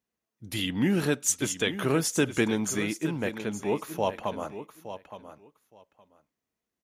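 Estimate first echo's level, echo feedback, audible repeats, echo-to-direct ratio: -12.0 dB, 16%, 2, -12.0 dB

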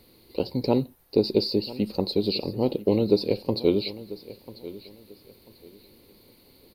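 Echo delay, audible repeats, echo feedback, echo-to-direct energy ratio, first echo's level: 0.992 s, 2, 27%, -16.5 dB, -17.0 dB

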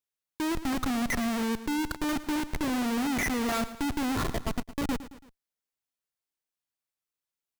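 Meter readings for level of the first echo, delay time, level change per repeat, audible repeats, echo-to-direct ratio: -15.0 dB, 0.111 s, -5.5 dB, 3, -13.5 dB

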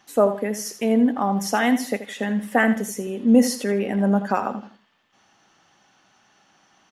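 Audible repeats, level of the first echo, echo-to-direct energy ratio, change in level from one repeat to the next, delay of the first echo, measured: 3, -12.0 dB, -11.5 dB, -10.5 dB, 81 ms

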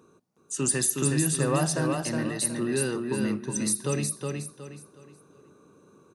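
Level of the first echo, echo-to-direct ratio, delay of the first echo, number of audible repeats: -4.0 dB, -3.5 dB, 0.366 s, 4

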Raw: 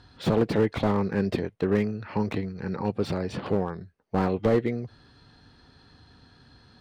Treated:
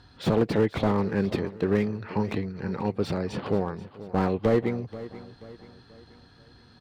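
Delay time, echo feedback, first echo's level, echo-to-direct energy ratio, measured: 0.483 s, 43%, -16.0 dB, -15.0 dB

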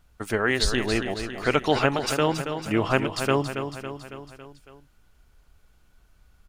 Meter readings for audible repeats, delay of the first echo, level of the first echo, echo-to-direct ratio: 5, 0.277 s, -8.5 dB, -6.5 dB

